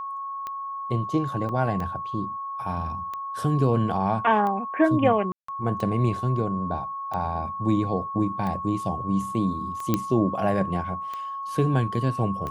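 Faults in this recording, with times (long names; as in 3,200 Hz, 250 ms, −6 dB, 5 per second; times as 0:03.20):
scratch tick 45 rpm −20 dBFS
whistle 1,100 Hz −30 dBFS
0:01.49: drop-out 3.6 ms
0:05.32–0:05.48: drop-out 164 ms
0:09.94: click −8 dBFS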